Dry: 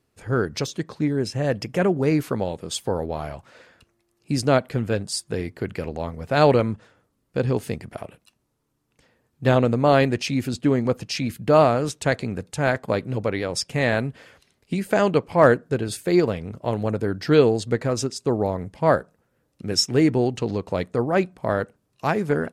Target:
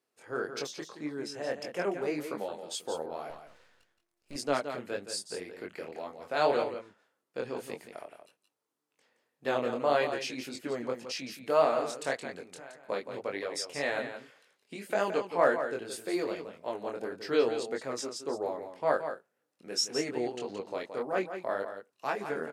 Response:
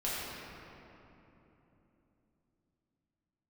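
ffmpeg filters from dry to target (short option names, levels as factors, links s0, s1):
-filter_complex "[0:a]highpass=390,asettb=1/sr,asplit=3[s0][s1][s2];[s0]atrim=end=12.494[s3];[s1]atrim=start=12.49:end=12.89,asetpts=PTS-STARTPTS,afade=t=in:d=0.004:c=qsin,afade=t=out:st=0.396:d=0.004:c=qsin,acompressor=threshold=0.0141:ratio=8[s4];[s2]atrim=start=12.886[s5];[s3][s4]acrossfade=d=0.004:c1=hsin:c2=qsin[s6];[s6][s5]acrossfade=d=0.004:c1=qsin:c2=hsin,flanger=delay=20:depth=5.5:speed=1.8,asettb=1/sr,asplit=3[s7][s8][s9];[s7]atrim=end=3.304[s10];[s8]atrim=start=3.3:end=4.36,asetpts=PTS-STARTPTS,afade=t=in:d=0.004:c=qsin,afade=t=out:st=1.056:d=0.004:c=qsin,aeval=exprs='max(val(0),0)':c=same[s11];[s9]atrim=start=4.356[s12];[s10][s11]acrossfade=d=0.004:c1=hsin:c2=qsin[s13];[s13][s12]acrossfade=d=0.004:c1=qsin:c2=hsin,aecho=1:1:171:0.355,volume=0.531"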